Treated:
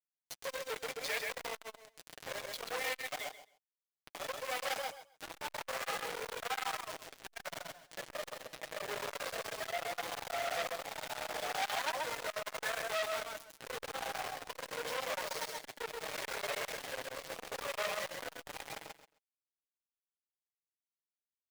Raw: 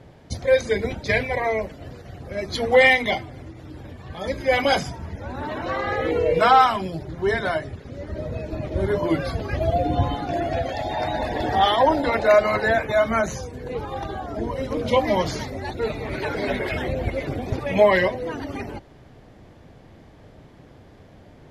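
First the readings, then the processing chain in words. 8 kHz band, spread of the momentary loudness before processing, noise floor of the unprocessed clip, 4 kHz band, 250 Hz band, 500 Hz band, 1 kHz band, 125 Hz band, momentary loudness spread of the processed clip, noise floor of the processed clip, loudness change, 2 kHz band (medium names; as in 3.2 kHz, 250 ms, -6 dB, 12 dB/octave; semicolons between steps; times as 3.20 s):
-1.5 dB, 16 LU, -48 dBFS, -10.0 dB, -28.0 dB, -20.0 dB, -17.5 dB, -31.0 dB, 10 LU, under -85 dBFS, -17.0 dB, -14.5 dB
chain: steep high-pass 450 Hz 48 dB/octave; in parallel at +0.5 dB: peak limiter -16 dBFS, peak gain reduction 11.5 dB; on the sum: compression 2:1, threshold -42 dBFS, peak gain reduction 18 dB; tremolo saw up 0.84 Hz, depth 60%; word length cut 6-bit, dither none; flange 1.5 Hz, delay 5.9 ms, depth 1.8 ms, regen -15%; on a send: feedback delay 132 ms, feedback 16%, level -4.5 dB; on the sum: transformer saturation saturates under 3.8 kHz; trim +3 dB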